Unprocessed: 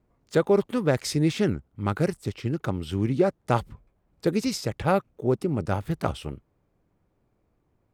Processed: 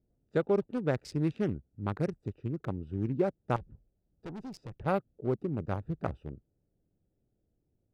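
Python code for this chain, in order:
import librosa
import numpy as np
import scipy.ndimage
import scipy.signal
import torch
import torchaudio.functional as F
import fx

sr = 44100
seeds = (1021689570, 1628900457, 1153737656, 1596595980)

y = fx.wiener(x, sr, points=41)
y = fx.high_shelf(y, sr, hz=5700.0, db=-8.5)
y = fx.tube_stage(y, sr, drive_db=32.0, bias=0.35, at=(3.56, 4.86))
y = F.gain(torch.from_numpy(y), -6.5).numpy()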